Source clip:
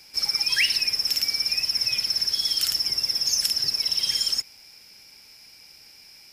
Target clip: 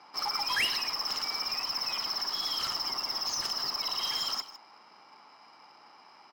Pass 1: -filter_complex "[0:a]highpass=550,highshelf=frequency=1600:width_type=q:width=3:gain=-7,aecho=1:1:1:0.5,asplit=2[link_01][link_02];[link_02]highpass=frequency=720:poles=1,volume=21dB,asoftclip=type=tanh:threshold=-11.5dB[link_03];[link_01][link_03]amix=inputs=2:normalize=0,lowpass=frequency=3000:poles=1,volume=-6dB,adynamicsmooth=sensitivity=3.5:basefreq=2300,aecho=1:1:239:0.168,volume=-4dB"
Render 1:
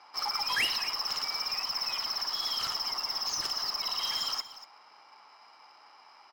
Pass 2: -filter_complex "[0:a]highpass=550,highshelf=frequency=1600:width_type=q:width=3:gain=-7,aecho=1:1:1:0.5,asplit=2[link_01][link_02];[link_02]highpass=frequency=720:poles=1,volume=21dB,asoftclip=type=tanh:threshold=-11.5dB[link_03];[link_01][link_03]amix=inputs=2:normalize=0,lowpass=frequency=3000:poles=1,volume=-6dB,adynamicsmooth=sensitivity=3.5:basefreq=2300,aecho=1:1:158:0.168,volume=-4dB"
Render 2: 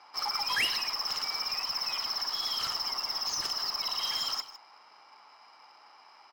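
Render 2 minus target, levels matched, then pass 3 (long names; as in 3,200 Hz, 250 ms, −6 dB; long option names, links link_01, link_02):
250 Hz band −3.5 dB
-filter_complex "[0:a]highpass=260,highshelf=frequency=1600:width_type=q:width=3:gain=-7,aecho=1:1:1:0.5,asplit=2[link_01][link_02];[link_02]highpass=frequency=720:poles=1,volume=21dB,asoftclip=type=tanh:threshold=-11.5dB[link_03];[link_01][link_03]amix=inputs=2:normalize=0,lowpass=frequency=3000:poles=1,volume=-6dB,adynamicsmooth=sensitivity=3.5:basefreq=2300,aecho=1:1:158:0.168,volume=-4dB"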